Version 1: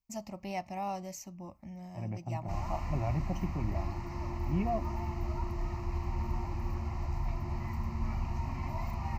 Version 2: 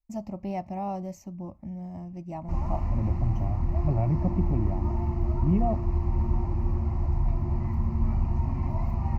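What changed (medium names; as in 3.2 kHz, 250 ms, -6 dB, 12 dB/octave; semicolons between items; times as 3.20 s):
second voice: entry +0.95 s; master: add tilt shelf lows +9 dB, about 1.1 kHz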